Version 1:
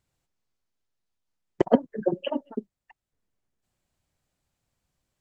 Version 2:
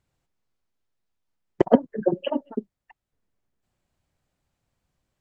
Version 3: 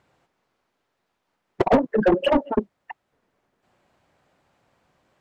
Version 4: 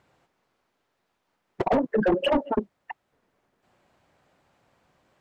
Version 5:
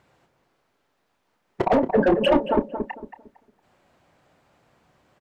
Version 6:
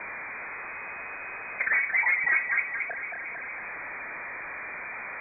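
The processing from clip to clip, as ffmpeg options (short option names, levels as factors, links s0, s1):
-af "highshelf=f=3800:g=-7,volume=1.41"
-filter_complex "[0:a]asplit=2[s0][s1];[s1]highpass=f=720:p=1,volume=44.7,asoftclip=type=tanh:threshold=0.841[s2];[s0][s2]amix=inputs=2:normalize=0,lowpass=f=1000:p=1,volume=0.501,volume=0.562"
-af "alimiter=limit=0.168:level=0:latency=1:release=47"
-filter_complex "[0:a]asplit=2[s0][s1];[s1]adelay=30,volume=0.237[s2];[s0][s2]amix=inputs=2:normalize=0,asplit=2[s3][s4];[s4]adelay=227,lowpass=f=960:p=1,volume=0.501,asplit=2[s5][s6];[s6]adelay=227,lowpass=f=960:p=1,volume=0.32,asplit=2[s7][s8];[s8]adelay=227,lowpass=f=960:p=1,volume=0.32,asplit=2[s9][s10];[s10]adelay=227,lowpass=f=960:p=1,volume=0.32[s11];[s5][s7][s9][s11]amix=inputs=4:normalize=0[s12];[s3][s12]amix=inputs=2:normalize=0,volume=1.41"
-af "aeval=exprs='val(0)+0.5*0.075*sgn(val(0))':c=same,lowpass=f=2100:t=q:w=0.5098,lowpass=f=2100:t=q:w=0.6013,lowpass=f=2100:t=q:w=0.9,lowpass=f=2100:t=q:w=2.563,afreqshift=-2500,volume=0.398"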